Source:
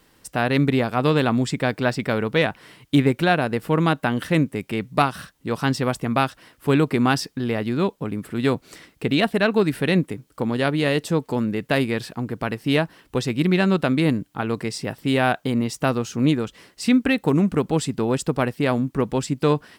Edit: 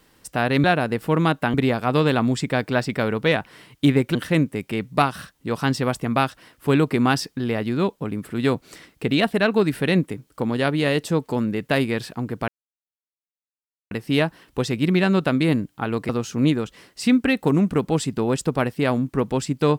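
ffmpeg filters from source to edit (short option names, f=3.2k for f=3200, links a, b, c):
-filter_complex "[0:a]asplit=6[a][b][c][d][e][f];[a]atrim=end=0.642[g];[b]atrim=start=3.248:end=4.152[h];[c]atrim=start=0.638:end=3.252[i];[d]atrim=start=4.148:end=12.48,asetpts=PTS-STARTPTS,afade=t=out:st=8.328:d=0.004:c=hsin,apad=pad_dur=1.43[j];[e]atrim=start=12.48:end=14.662,asetpts=PTS-STARTPTS,afade=t=in:d=0.004:c=hsin[k];[f]atrim=start=15.898[l];[g][h]acrossfade=d=0.004:c1=hsin:c2=hsin[m];[m][i]acrossfade=d=0.004:c1=hsin:c2=hsin[n];[j][k]concat=n=2:v=0:a=1[o];[n][o]acrossfade=d=0.004:c1=hsin:c2=hsin[p];[p][l]acrossfade=d=0.004:c1=hsin:c2=hsin"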